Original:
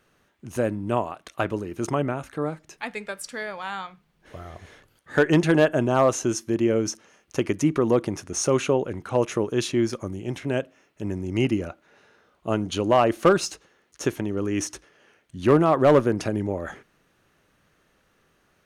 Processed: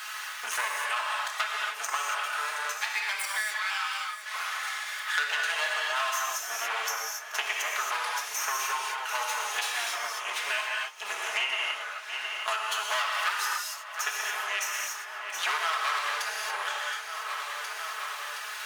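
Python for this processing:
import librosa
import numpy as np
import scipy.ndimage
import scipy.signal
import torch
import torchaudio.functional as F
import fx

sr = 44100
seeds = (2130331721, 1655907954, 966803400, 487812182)

y = fx.lower_of_two(x, sr, delay_ms=4.7)
y = scipy.signal.sosfilt(scipy.signal.butter(4, 1100.0, 'highpass', fs=sr, output='sos'), y)
y = fx.echo_feedback(y, sr, ms=718, feedback_pct=45, wet_db=-21.0)
y = fx.rev_gated(y, sr, seeds[0], gate_ms=300, shape='flat', drr_db=-2.0)
y = fx.band_squash(y, sr, depth_pct=100)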